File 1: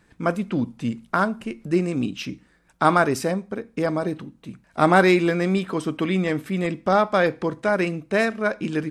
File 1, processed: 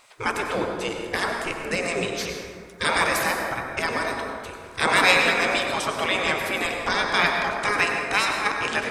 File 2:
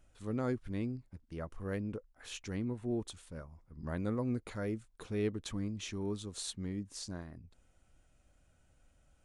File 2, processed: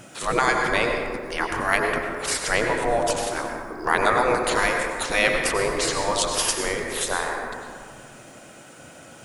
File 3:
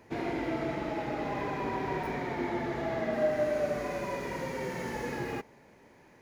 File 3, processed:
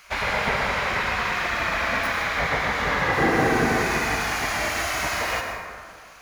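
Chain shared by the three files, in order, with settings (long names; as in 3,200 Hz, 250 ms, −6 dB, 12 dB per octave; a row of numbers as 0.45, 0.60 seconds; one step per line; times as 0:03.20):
gate on every frequency bin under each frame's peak −15 dB weak
in parallel at −2.5 dB: downward compressor, threshold −43 dBFS
on the sum: dense smooth reverb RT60 2 s, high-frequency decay 0.4×, pre-delay 80 ms, DRR 2 dB
loudness normalisation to −23 LKFS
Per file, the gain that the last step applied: +8.0, +23.5, +14.0 decibels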